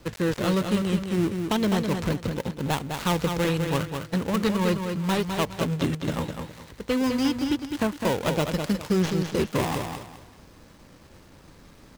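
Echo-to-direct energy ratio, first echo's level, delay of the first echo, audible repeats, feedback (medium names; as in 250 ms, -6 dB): -5.5 dB, -6.0 dB, 206 ms, 3, 28%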